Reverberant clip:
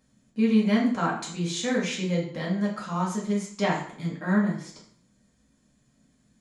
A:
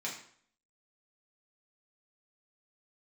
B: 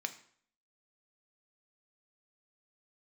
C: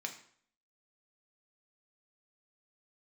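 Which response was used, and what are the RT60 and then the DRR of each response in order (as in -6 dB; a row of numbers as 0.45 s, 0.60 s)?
A; 0.55 s, 0.55 s, 0.55 s; -4.5 dB, 7.0 dB, 3.0 dB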